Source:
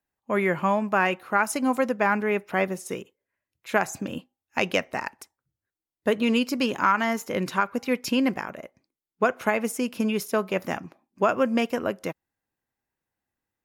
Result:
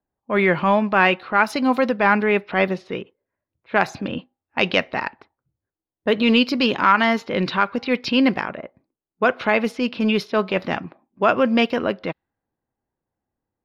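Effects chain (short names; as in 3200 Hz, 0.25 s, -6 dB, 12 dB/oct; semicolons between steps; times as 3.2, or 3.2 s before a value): low-pass opened by the level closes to 840 Hz, open at -20.5 dBFS; resonant high shelf 5700 Hz -12 dB, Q 3; transient shaper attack -5 dB, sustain 0 dB; gain +6.5 dB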